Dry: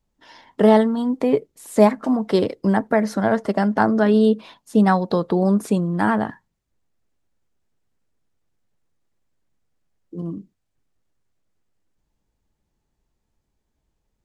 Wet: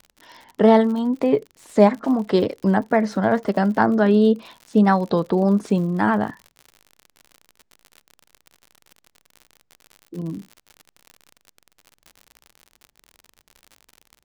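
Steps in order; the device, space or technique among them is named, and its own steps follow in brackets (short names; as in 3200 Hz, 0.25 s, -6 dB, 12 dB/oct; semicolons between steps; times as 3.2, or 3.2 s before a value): lo-fi chain (LPF 6000 Hz 12 dB/oct; wow and flutter; crackle 65/s -32 dBFS)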